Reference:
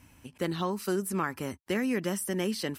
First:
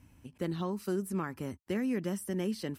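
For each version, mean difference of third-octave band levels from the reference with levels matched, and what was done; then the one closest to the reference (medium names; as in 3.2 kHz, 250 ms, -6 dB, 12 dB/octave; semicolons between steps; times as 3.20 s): 4.0 dB: bass shelf 470 Hz +9 dB; trim -9 dB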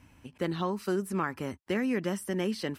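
2.0 dB: treble shelf 6 kHz -11 dB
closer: second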